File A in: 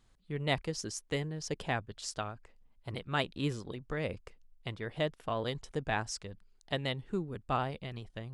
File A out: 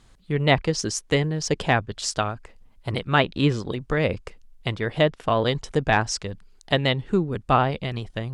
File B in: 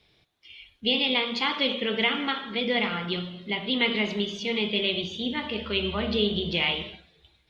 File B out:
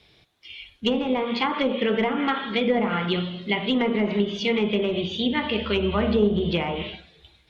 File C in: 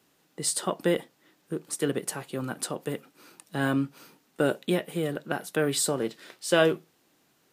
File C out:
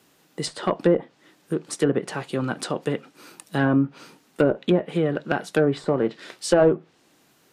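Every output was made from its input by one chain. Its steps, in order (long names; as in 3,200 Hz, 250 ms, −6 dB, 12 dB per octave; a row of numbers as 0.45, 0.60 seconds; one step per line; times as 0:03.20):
asymmetric clip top −19.5 dBFS
treble cut that deepens with the level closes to 970 Hz, closed at −21.5 dBFS
loudness normalisation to −24 LKFS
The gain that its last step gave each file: +13.0, +6.5, +7.0 decibels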